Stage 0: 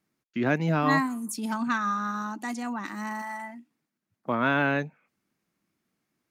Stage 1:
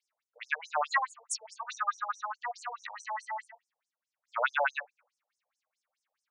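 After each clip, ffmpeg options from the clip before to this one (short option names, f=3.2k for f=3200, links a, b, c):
-af "afftfilt=real='re*between(b*sr/1024,630*pow(7400/630,0.5+0.5*sin(2*PI*4.7*pts/sr))/1.41,630*pow(7400/630,0.5+0.5*sin(2*PI*4.7*pts/sr))*1.41)':imag='im*between(b*sr/1024,630*pow(7400/630,0.5+0.5*sin(2*PI*4.7*pts/sr))/1.41,630*pow(7400/630,0.5+0.5*sin(2*PI*4.7*pts/sr))*1.41)':win_size=1024:overlap=0.75,volume=3.5dB"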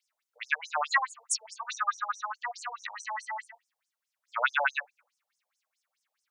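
-af "tiltshelf=f=700:g=-7,volume=-1.5dB"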